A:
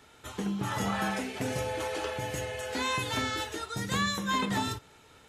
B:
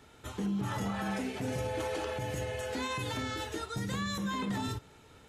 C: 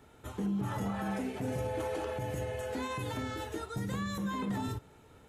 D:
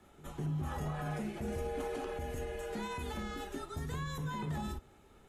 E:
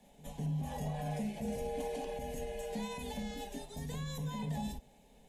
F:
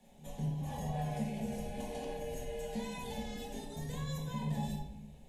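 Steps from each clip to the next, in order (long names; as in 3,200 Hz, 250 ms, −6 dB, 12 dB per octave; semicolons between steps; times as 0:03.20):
low-shelf EQ 480 Hz +7 dB; brickwall limiter −23 dBFS, peak gain reduction 8.5 dB; level −3 dB
drawn EQ curve 730 Hz 0 dB, 5,000 Hz −8 dB, 13,000 Hz 0 dB
echo ahead of the sound 203 ms −20 dB; frequency shifter −47 Hz; level −3 dB
phaser with its sweep stopped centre 350 Hz, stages 6; level +2.5 dB
rectangular room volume 240 cubic metres, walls mixed, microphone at 1 metre; level −2.5 dB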